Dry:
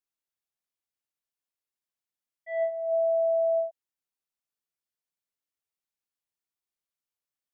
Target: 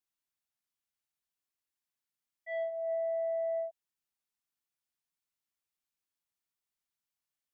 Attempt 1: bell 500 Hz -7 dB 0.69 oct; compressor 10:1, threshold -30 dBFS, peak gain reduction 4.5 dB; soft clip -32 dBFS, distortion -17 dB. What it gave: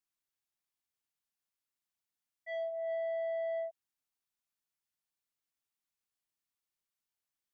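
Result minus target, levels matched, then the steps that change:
soft clip: distortion +11 dB
change: soft clip -25 dBFS, distortion -29 dB

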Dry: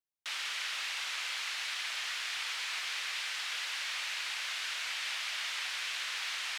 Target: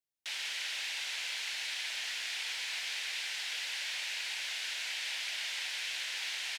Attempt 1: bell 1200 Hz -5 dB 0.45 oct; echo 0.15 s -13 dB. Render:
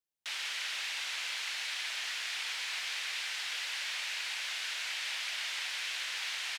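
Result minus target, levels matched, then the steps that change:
1000 Hz band +3.5 dB
change: bell 1200 Hz -13.5 dB 0.45 oct

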